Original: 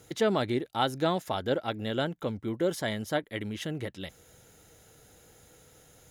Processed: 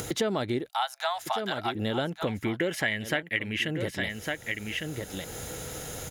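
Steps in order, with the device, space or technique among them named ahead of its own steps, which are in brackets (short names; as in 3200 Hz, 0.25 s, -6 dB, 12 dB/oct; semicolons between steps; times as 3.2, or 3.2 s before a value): 0.69–1.75 steep high-pass 670 Hz 72 dB/oct; 2.27–3.68 band shelf 2200 Hz +14 dB 1 oct; echo 1.155 s -12.5 dB; upward and downward compression (upward compressor, threshold -36 dBFS; compressor 4:1, threshold -36 dBFS, peak gain reduction 14 dB); gain +9 dB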